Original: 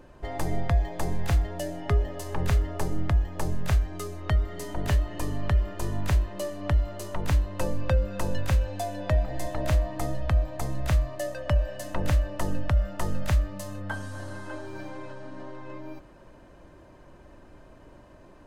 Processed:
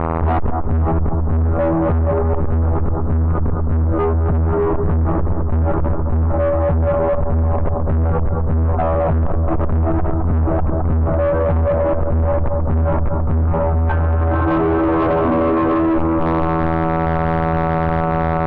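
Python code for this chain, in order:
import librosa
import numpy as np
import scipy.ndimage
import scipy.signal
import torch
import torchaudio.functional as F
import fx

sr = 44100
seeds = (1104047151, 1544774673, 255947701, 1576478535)

p1 = fx.tracing_dist(x, sr, depth_ms=0.057)
p2 = fx.robotise(p1, sr, hz=81.6)
p3 = fx.fuzz(p2, sr, gain_db=43.0, gate_db=-46.0)
p4 = scipy.signal.sosfilt(scipy.signal.butter(8, 1300.0, 'lowpass', fs=sr, output='sos'), p3)
p5 = fx.low_shelf(p4, sr, hz=100.0, db=10.5)
p6 = p5 + fx.echo_feedback(p5, sr, ms=215, feedback_pct=53, wet_db=-8.5, dry=0)
p7 = fx.rider(p6, sr, range_db=10, speed_s=0.5)
p8 = 10.0 ** (-13.5 / 20.0) * np.tanh(p7 / 10.0 ** (-13.5 / 20.0))
p9 = p8 + 10.0 ** (-19.5 / 20.0) * np.pad(p8, (int(495 * sr / 1000.0), 0))[:len(p8)]
y = fx.env_flatten(p9, sr, amount_pct=70)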